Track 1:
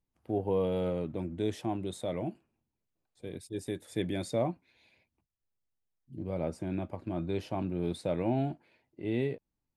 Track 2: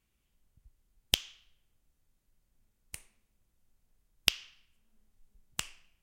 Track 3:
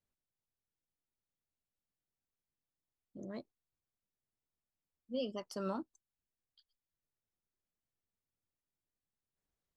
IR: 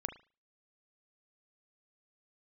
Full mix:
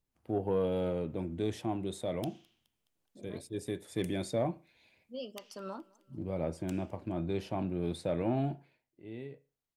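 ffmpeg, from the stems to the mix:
-filter_complex "[0:a]volume=-4dB,afade=type=out:start_time=8.57:duration=0.26:silence=0.237137,asplit=2[link_01][link_02];[link_02]volume=-5dB[link_03];[1:a]highpass=340,acompressor=threshold=-36dB:ratio=4,adelay=1100,volume=-13.5dB,asplit=2[link_04][link_05];[link_05]volume=-21dB[link_06];[2:a]lowshelf=frequency=230:gain=-9,volume=-10dB,asplit=3[link_07][link_08][link_09];[link_08]volume=-5.5dB[link_10];[link_09]volume=-17.5dB[link_11];[link_04][link_07]amix=inputs=2:normalize=0,acontrast=69,alimiter=level_in=3dB:limit=-24dB:level=0:latency=1:release=95,volume=-3dB,volume=0dB[link_12];[3:a]atrim=start_sample=2205[link_13];[link_03][link_10]amix=inputs=2:normalize=0[link_14];[link_14][link_13]afir=irnorm=-1:irlink=0[link_15];[link_06][link_11]amix=inputs=2:normalize=0,aecho=0:1:210|420|630|840|1050|1260|1470|1680:1|0.53|0.281|0.149|0.0789|0.0418|0.0222|0.0117[link_16];[link_01][link_12][link_15][link_16]amix=inputs=4:normalize=0,asoftclip=type=tanh:threshold=-19dB"

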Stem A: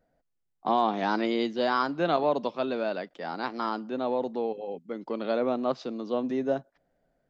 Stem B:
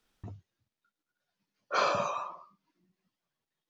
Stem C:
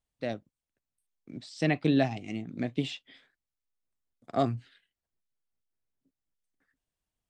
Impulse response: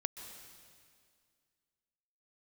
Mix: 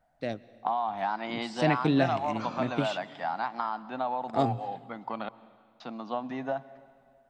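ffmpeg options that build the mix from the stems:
-filter_complex "[0:a]lowshelf=frequency=580:width_type=q:width=3:gain=-9.5,acompressor=threshold=-30dB:ratio=5,bass=frequency=250:gain=8,treble=frequency=4000:gain=-10,volume=0dB,asplit=3[link_01][link_02][link_03];[link_01]atrim=end=5.29,asetpts=PTS-STARTPTS,afade=type=out:start_time=5.286:duration=0.004:curve=hsin[link_04];[link_02]atrim=start=5.29:end=5.8,asetpts=PTS-STARTPTS,volume=0[link_05];[link_03]atrim=start=5.8,asetpts=PTS-STARTPTS,afade=type=in:duration=0.004:curve=hsin[link_06];[link_04][link_05][link_06]concat=n=3:v=0:a=1,asplit=3[link_07][link_08][link_09];[link_08]volume=-8.5dB[link_10];[1:a]adelay=650,volume=-9.5dB[link_11];[2:a]volume=-2dB,asplit=2[link_12][link_13];[link_13]volume=-10dB[link_14];[link_09]apad=whole_len=191568[link_15];[link_11][link_15]sidechaincompress=threshold=-34dB:ratio=8:attack=5.8:release=367[link_16];[3:a]atrim=start_sample=2205[link_17];[link_10][link_14]amix=inputs=2:normalize=0[link_18];[link_18][link_17]afir=irnorm=-1:irlink=0[link_19];[link_07][link_16][link_12][link_19]amix=inputs=4:normalize=0"

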